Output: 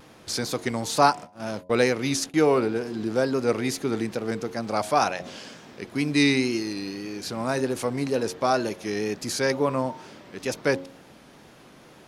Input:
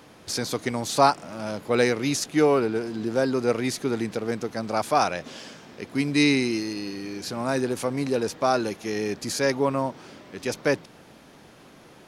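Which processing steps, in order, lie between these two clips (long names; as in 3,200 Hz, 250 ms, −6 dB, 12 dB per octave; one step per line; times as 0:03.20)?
0:01.02–0:02.34: noise gate −33 dBFS, range −38 dB
tape wow and flutter 60 cents
hum removal 90.69 Hz, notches 11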